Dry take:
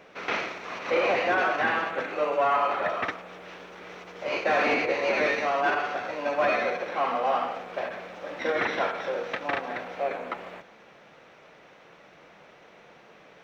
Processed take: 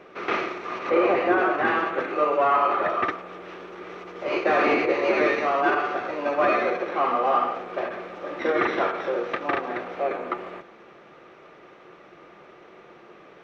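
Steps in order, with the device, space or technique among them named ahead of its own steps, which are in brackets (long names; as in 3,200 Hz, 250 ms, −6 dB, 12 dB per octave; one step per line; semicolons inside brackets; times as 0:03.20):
0:00.89–0:01.65: high-shelf EQ 3,200 Hz −8.5 dB
inside a helmet (high-shelf EQ 4,700 Hz −9.5 dB; hollow resonant body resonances 360/1,200 Hz, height 12 dB, ringing for 55 ms)
level +2 dB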